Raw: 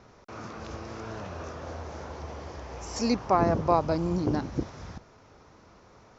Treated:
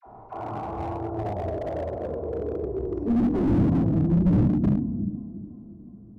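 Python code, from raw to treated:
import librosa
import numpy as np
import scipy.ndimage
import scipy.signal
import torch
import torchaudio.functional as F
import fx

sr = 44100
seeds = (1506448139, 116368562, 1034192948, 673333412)

p1 = fx.envelope_sharpen(x, sr, power=3.0, at=(0.93, 1.61), fade=0.02)
p2 = fx.transient(p1, sr, attack_db=9, sustain_db=-3, at=(2.34, 2.92), fade=0.02)
p3 = fx.filter_sweep_lowpass(p2, sr, from_hz=830.0, to_hz=220.0, start_s=1.02, end_s=3.93, q=6.7)
p4 = fx.dispersion(p3, sr, late='lows', ms=63.0, hz=780.0)
p5 = p4 + fx.echo_thinned(p4, sr, ms=360, feedback_pct=59, hz=160.0, wet_db=-14.5, dry=0)
p6 = fx.room_shoebox(p5, sr, seeds[0], volume_m3=2100.0, walls='furnished', distance_m=3.2)
y = fx.slew_limit(p6, sr, full_power_hz=27.0)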